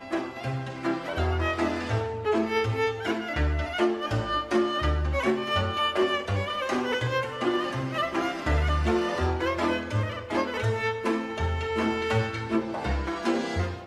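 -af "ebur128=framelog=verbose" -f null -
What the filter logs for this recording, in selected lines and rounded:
Integrated loudness:
  I:         -27.4 LUFS
  Threshold: -37.4 LUFS
Loudness range:
  LRA:         1.7 LU
  Threshold: -47.2 LUFS
  LRA low:   -28.1 LUFS
  LRA high:  -26.4 LUFS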